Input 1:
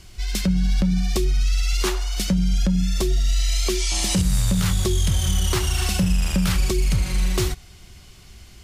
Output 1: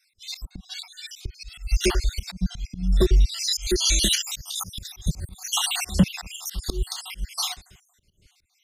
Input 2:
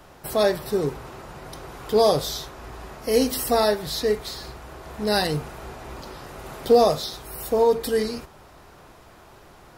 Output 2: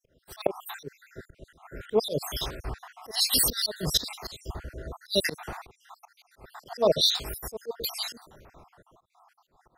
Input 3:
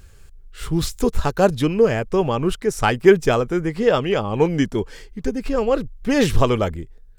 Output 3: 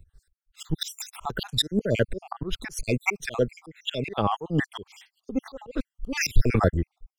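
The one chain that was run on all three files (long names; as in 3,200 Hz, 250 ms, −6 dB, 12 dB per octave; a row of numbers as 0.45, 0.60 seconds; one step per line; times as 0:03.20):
time-frequency cells dropped at random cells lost 63%
dynamic equaliser 3,700 Hz, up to +5 dB, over −47 dBFS, Q 2.3
downward compressor 2 to 1, threshold −27 dBFS
volume swells 152 ms
multiband upward and downward expander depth 70%
normalise the peak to −6 dBFS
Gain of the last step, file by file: +5.5, +4.5, +6.0 decibels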